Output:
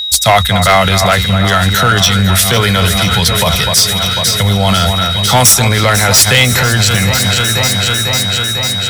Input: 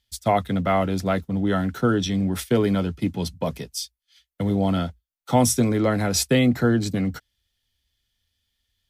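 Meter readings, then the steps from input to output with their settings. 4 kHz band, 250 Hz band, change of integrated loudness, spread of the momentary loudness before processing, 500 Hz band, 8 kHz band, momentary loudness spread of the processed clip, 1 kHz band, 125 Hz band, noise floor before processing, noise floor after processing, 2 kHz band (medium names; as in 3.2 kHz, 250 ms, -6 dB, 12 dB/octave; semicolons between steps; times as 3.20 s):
+24.0 dB, +4.5 dB, +13.5 dB, 10 LU, +9.0 dB, +20.0 dB, 5 LU, +15.0 dB, +14.0 dB, -82 dBFS, -15 dBFS, +20.5 dB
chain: amplifier tone stack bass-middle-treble 10-0-10; whistle 3.8 kHz -49 dBFS; overload inside the chain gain 27.5 dB; echo whose repeats swap between lows and highs 249 ms, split 2.4 kHz, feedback 85%, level -10.5 dB; loudness maximiser +34 dB; trim -1 dB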